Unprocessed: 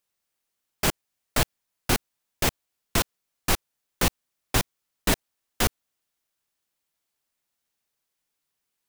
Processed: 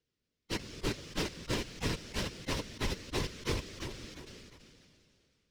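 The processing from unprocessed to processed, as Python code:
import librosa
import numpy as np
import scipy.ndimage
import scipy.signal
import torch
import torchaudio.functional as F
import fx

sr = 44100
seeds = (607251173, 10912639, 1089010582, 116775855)

p1 = fx.band_invert(x, sr, width_hz=1000)
p2 = fx.sample_hold(p1, sr, seeds[0], rate_hz=2300.0, jitter_pct=0)
p3 = p1 + (p2 * 10.0 ** (-6.0 / 20.0))
p4 = fx.curve_eq(p3, sr, hz=(470.0, 720.0, 1300.0, 1900.0, 5400.0, 15000.0), db=(0, -17, -8, -1, -1, -30))
p5 = 10.0 ** (-27.0 / 20.0) * np.tanh(p4 / 10.0 ** (-27.0 / 20.0))
p6 = p5 + fx.echo_feedback(p5, sr, ms=565, feedback_pct=31, wet_db=-11.0, dry=0)
p7 = fx.whisperise(p6, sr, seeds[1])
p8 = fx.low_shelf(p7, sr, hz=220.0, db=7.5)
p9 = fx.stretch_vocoder_free(p8, sr, factor=0.62)
y = fx.sustainer(p9, sr, db_per_s=24.0)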